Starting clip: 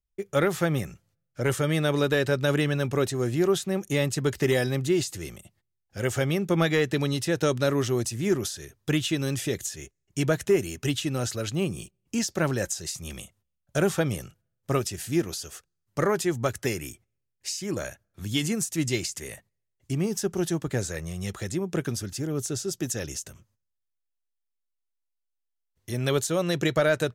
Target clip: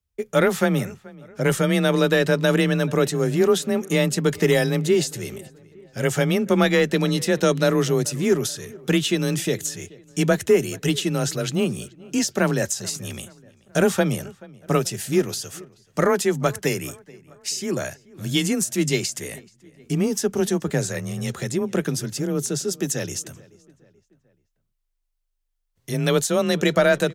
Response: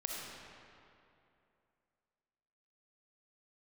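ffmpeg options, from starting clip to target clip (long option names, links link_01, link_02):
-filter_complex "[0:a]afreqshift=25,asplit=2[link_01][link_02];[link_02]adelay=431,lowpass=frequency=2800:poles=1,volume=-22.5dB,asplit=2[link_03][link_04];[link_04]adelay=431,lowpass=frequency=2800:poles=1,volume=0.5,asplit=2[link_05][link_06];[link_06]adelay=431,lowpass=frequency=2800:poles=1,volume=0.5[link_07];[link_01][link_03][link_05][link_07]amix=inputs=4:normalize=0,volume=5dB"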